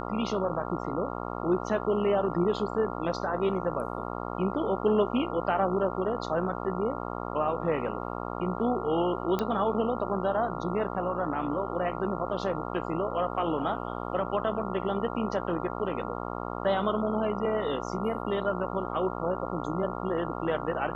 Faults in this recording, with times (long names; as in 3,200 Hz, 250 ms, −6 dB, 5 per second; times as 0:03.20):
mains buzz 60 Hz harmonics 23 −35 dBFS
0:09.39: click −16 dBFS